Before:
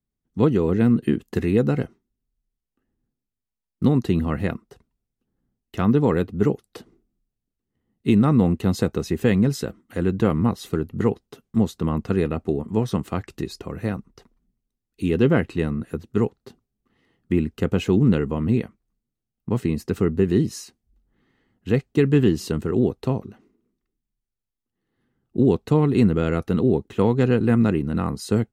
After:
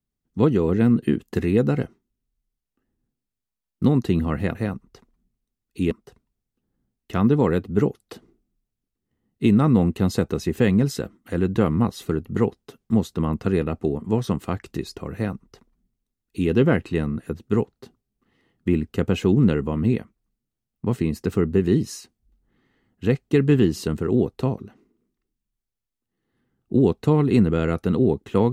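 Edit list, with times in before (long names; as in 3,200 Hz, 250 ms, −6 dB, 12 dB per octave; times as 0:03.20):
0:13.78–0:15.14: duplicate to 0:04.55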